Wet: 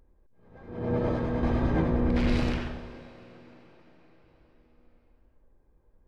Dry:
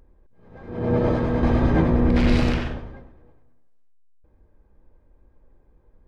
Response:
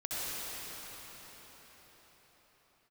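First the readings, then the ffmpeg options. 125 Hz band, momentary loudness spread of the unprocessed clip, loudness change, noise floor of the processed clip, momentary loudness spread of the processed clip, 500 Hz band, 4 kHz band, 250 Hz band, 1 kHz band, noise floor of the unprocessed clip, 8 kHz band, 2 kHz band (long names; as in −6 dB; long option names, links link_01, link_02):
−7.0 dB, 12 LU, −6.5 dB, −64 dBFS, 17 LU, −6.5 dB, −6.0 dB, −6.5 dB, −6.5 dB, −59 dBFS, can't be measured, −6.5 dB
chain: -filter_complex "[0:a]asplit=2[link_01][link_02];[link_02]highpass=100[link_03];[1:a]atrim=start_sample=2205,lowshelf=frequency=140:gain=-11[link_04];[link_03][link_04]afir=irnorm=-1:irlink=0,volume=-19dB[link_05];[link_01][link_05]amix=inputs=2:normalize=0,volume=-7dB"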